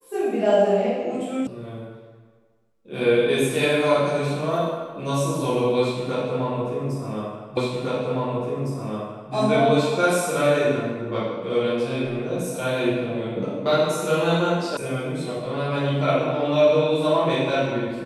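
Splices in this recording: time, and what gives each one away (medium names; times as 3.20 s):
1.47 s: sound stops dead
7.57 s: repeat of the last 1.76 s
14.77 s: sound stops dead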